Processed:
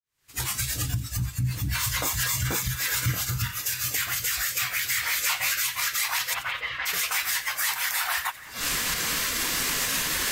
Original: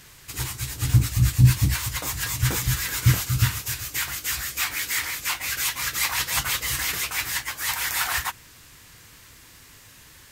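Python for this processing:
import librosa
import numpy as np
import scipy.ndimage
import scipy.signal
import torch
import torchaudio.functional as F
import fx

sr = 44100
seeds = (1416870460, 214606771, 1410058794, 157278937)

p1 = fx.fade_in_head(x, sr, length_s=2.44)
p2 = fx.recorder_agc(p1, sr, target_db=-11.5, rise_db_per_s=68.0, max_gain_db=30)
p3 = fx.low_shelf(p2, sr, hz=230.0, db=-5.5)
p4 = 10.0 ** (-14.0 / 20.0) * np.tanh(p3 / 10.0 ** (-14.0 / 20.0))
p5 = p3 + (p4 * 10.0 ** (-10.0 / 20.0))
p6 = fx.noise_reduce_blind(p5, sr, reduce_db=11)
p7 = fx.doubler(p6, sr, ms=13.0, db=-6.0, at=(5.01, 5.62))
p8 = fx.lowpass(p7, sr, hz=3100.0, slope=24, at=(6.33, 6.85), fade=0.02)
p9 = p8 + fx.echo_split(p8, sr, split_hz=2100.0, low_ms=781, high_ms=88, feedback_pct=52, wet_db=-15.0, dry=0)
p10 = fx.env_flatten(p9, sr, amount_pct=50, at=(1.46, 2.59))
y = p10 * 10.0 ** (-7.0 / 20.0)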